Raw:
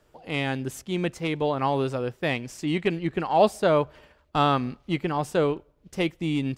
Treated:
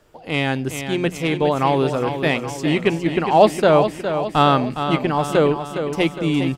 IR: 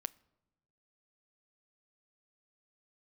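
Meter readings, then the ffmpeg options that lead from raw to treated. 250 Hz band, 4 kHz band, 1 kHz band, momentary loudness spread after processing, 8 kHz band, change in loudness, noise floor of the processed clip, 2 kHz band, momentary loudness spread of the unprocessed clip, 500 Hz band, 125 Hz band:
+7.0 dB, +7.0 dB, +7.0 dB, 8 LU, +7.5 dB, +7.0 dB, -36 dBFS, +7.0 dB, 9 LU, +7.5 dB, +6.5 dB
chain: -filter_complex "[0:a]bandreject=f=60:t=h:w=6,bandreject=f=120:t=h:w=6,bandreject=f=180:t=h:w=6,asplit=2[s0][s1];[s1]aecho=0:1:411|822|1233|1644|2055|2466:0.376|0.199|0.106|0.056|0.0297|0.0157[s2];[s0][s2]amix=inputs=2:normalize=0,volume=2.11"

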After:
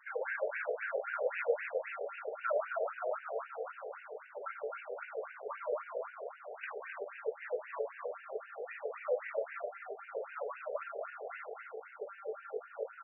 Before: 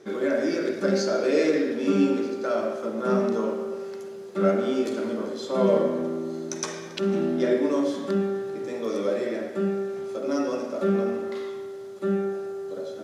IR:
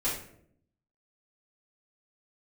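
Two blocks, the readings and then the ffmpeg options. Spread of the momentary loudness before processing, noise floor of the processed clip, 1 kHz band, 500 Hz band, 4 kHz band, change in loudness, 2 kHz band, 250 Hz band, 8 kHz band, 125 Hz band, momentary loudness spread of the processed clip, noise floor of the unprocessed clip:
10 LU, -54 dBFS, -7.0 dB, -13.0 dB, under -20 dB, -13.5 dB, -3.5 dB, under -40 dB, under -40 dB, under -40 dB, 10 LU, -38 dBFS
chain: -filter_complex "[0:a]asubboost=boost=12:cutoff=150,acompressor=threshold=0.0355:ratio=2.5,highshelf=f=5400:g=10,aeval=exprs='0.158*(cos(1*acos(clip(val(0)/0.158,-1,1)))-cos(1*PI/2))+0.0355*(cos(2*acos(clip(val(0)/0.158,-1,1)))-cos(2*PI/2))':c=same,flanger=delay=0.9:depth=5.8:regen=45:speed=1.8:shape=triangular,bandreject=f=750:w=12,asplit=2[s0][s1];[s1]adelay=24,volume=0.282[s2];[s0][s2]amix=inputs=2:normalize=0,asplit=7[s3][s4][s5][s6][s7][s8][s9];[s4]adelay=260,afreqshift=53,volume=0.501[s10];[s5]adelay=520,afreqshift=106,volume=0.232[s11];[s6]adelay=780,afreqshift=159,volume=0.106[s12];[s7]adelay=1040,afreqshift=212,volume=0.049[s13];[s8]adelay=1300,afreqshift=265,volume=0.0224[s14];[s9]adelay=1560,afreqshift=318,volume=0.0104[s15];[s3][s10][s11][s12][s13][s14][s15]amix=inputs=7:normalize=0,afftfilt=real='re*between(b*sr/1024,550*pow(2100/550,0.5+0.5*sin(2*PI*3.8*pts/sr))/1.41,550*pow(2100/550,0.5+0.5*sin(2*PI*3.8*pts/sr))*1.41)':imag='im*between(b*sr/1024,550*pow(2100/550,0.5+0.5*sin(2*PI*3.8*pts/sr))/1.41,550*pow(2100/550,0.5+0.5*sin(2*PI*3.8*pts/sr))*1.41)':win_size=1024:overlap=0.75,volume=2.11"

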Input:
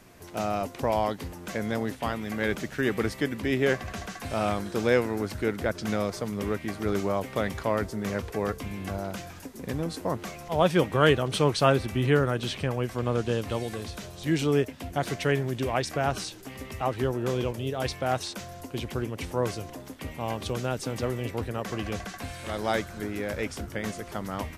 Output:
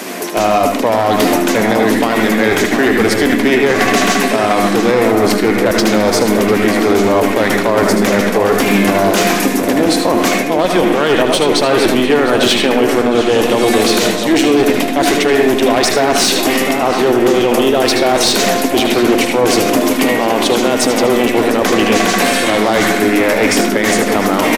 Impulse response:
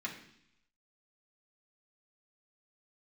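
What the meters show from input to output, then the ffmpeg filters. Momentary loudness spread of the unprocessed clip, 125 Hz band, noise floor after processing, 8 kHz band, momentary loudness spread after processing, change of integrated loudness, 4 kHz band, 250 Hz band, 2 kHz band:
12 LU, +6.0 dB, -16 dBFS, +22.5 dB, 2 LU, +17.0 dB, +20.0 dB, +18.0 dB, +18.0 dB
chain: -filter_complex "[0:a]highpass=f=240:w=0.5412,highpass=f=240:w=1.3066,equalizer=f=1300:w=1.5:g=-3,areverse,acompressor=threshold=0.01:ratio=5,areverse,aeval=exprs='clip(val(0),-1,0.00891)':c=same,asplit=2[s0][s1];[s1]adelay=699.7,volume=0.447,highshelf=f=4000:g=-15.7[s2];[s0][s2]amix=inputs=2:normalize=0,asplit=2[s3][s4];[1:a]atrim=start_sample=2205,adelay=76[s5];[s4][s5]afir=irnorm=-1:irlink=0,volume=0.596[s6];[s3][s6]amix=inputs=2:normalize=0,alimiter=level_in=39.8:limit=0.891:release=50:level=0:latency=1,volume=0.891"

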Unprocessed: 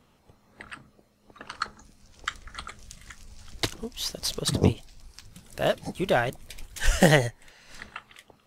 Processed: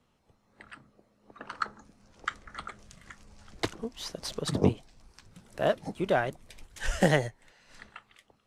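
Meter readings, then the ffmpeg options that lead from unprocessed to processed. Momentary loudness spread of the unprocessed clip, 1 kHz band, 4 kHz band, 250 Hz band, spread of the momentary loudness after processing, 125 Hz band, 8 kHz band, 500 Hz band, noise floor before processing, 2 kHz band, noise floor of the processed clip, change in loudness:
22 LU, -2.5 dB, -8.0 dB, -3.0 dB, 23 LU, -5.0 dB, -9.0 dB, -2.5 dB, -64 dBFS, -5.0 dB, -70 dBFS, -4.5 dB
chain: -filter_complex "[0:a]lowpass=11000,acrossover=split=130|1900[s0][s1][s2];[s1]dynaudnorm=f=220:g=9:m=3.16[s3];[s0][s3][s2]amix=inputs=3:normalize=0,volume=0.376"

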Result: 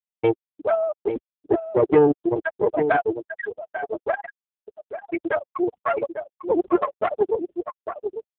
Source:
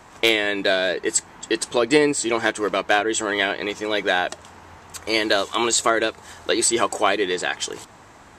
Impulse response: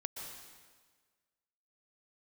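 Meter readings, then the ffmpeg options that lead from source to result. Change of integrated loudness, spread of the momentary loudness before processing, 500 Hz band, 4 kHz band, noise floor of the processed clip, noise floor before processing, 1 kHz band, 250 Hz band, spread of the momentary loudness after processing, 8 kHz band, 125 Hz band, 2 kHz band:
-3.0 dB, 9 LU, +0.5 dB, under -25 dB, under -85 dBFS, -47 dBFS, -2.5 dB, 0.0 dB, 13 LU, under -40 dB, +3.5 dB, -10.0 dB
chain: -filter_complex "[0:a]asplit=2[s0][s1];[s1]acompressor=threshold=0.0224:ratio=16,volume=0.75[s2];[s0][s2]amix=inputs=2:normalize=0,afftfilt=real='re*gte(hypot(re,im),0.708)':imag='im*gte(hypot(re,im),0.708)':win_size=1024:overlap=0.75,lowshelf=f=420:g=3,aecho=1:1:846:0.376,aeval=exprs='(tanh(6.31*val(0)+0.75)-tanh(0.75))/6.31':c=same,volume=2.24" -ar 8000 -c:a libopencore_amrnb -b:a 4750

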